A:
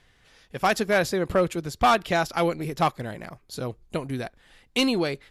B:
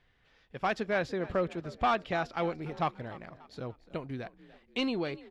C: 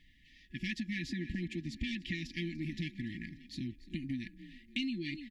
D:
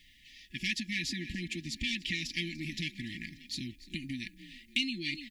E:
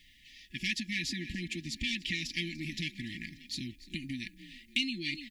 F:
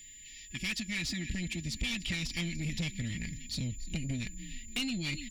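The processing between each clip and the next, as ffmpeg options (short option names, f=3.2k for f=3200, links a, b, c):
-filter_complex "[0:a]lowpass=3.6k,asplit=5[a][b][c][d][e];[b]adelay=292,afreqshift=46,volume=-18.5dB[f];[c]adelay=584,afreqshift=92,volume=-25.6dB[g];[d]adelay=876,afreqshift=138,volume=-32.8dB[h];[e]adelay=1168,afreqshift=184,volume=-39.9dB[i];[a][f][g][h][i]amix=inputs=5:normalize=0,volume=-8dB"
-af "afftfilt=real='re*(1-between(b*sr/4096,360,1700))':imag='im*(1-between(b*sr/4096,360,1700))':win_size=4096:overlap=0.75,aecho=1:1:4.2:0.43,acompressor=threshold=-39dB:ratio=6,volume=5dB"
-af "aexciter=amount=2:drive=9.1:freq=2.1k,volume=-1.5dB"
-af anull
-af "asubboost=boost=8:cutoff=140,asoftclip=type=tanh:threshold=-29.5dB,aeval=exprs='val(0)+0.00282*sin(2*PI*7100*n/s)':c=same,volume=1.5dB"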